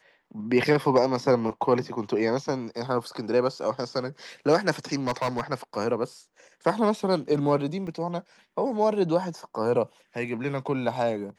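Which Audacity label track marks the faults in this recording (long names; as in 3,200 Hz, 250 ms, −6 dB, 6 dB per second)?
5.070000	5.410000	clipping −21 dBFS
7.870000	7.870000	drop-out 3.2 ms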